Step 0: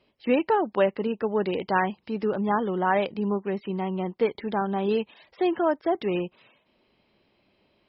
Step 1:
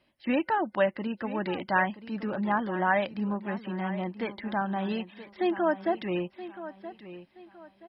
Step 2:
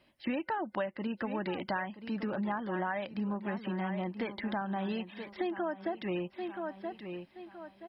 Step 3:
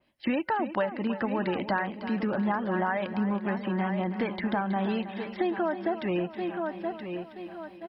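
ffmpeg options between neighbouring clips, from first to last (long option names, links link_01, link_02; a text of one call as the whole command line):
ffmpeg -i in.wav -af "superequalizer=7b=0.316:11b=1.78:16b=3.16,aecho=1:1:975|1950|2925:0.2|0.0638|0.0204,volume=-2.5dB" out.wav
ffmpeg -i in.wav -af "acompressor=threshold=-34dB:ratio=6,volume=2.5dB" out.wav
ffmpeg -i in.wav -af "agate=range=-9dB:threshold=-55dB:ratio=16:detection=peak,aecho=1:1:322|644|966|1288|1610:0.251|0.121|0.0579|0.0278|0.0133,adynamicequalizer=threshold=0.00224:dfrequency=2800:dqfactor=0.7:tfrequency=2800:tqfactor=0.7:attack=5:release=100:ratio=0.375:range=2:mode=cutabove:tftype=highshelf,volume=6dB" out.wav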